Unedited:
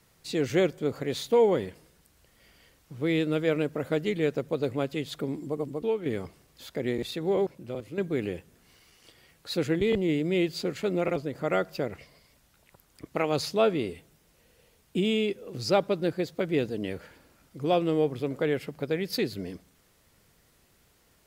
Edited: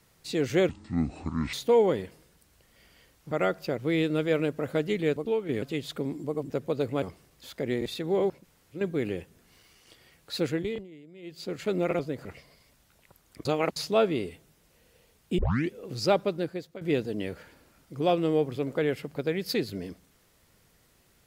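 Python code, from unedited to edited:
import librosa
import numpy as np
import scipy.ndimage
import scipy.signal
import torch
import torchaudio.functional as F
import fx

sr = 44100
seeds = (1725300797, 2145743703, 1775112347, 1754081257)

y = fx.edit(x, sr, fx.speed_span(start_s=0.69, length_s=0.48, speed=0.57),
    fx.swap(start_s=4.33, length_s=0.52, other_s=5.73, other_length_s=0.46),
    fx.room_tone_fill(start_s=7.59, length_s=0.31, crossfade_s=0.06),
    fx.fade_down_up(start_s=9.58, length_s=1.28, db=-22.5, fade_s=0.47),
    fx.move(start_s=11.42, length_s=0.47, to_s=2.95),
    fx.reverse_span(start_s=13.09, length_s=0.31),
    fx.tape_start(start_s=15.02, length_s=0.32),
    fx.fade_out_to(start_s=15.84, length_s=0.61, floor_db=-15.5), tone=tone)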